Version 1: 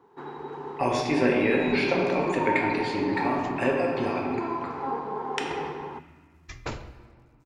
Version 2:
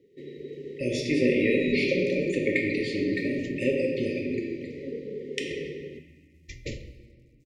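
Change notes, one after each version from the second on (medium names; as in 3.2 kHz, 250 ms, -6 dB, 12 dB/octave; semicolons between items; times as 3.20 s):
master: add brick-wall FIR band-stop 600–1800 Hz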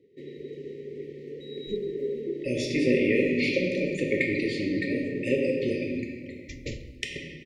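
speech: entry +1.65 s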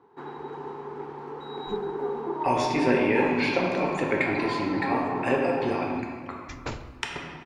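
master: remove brick-wall FIR band-stop 600–1800 Hz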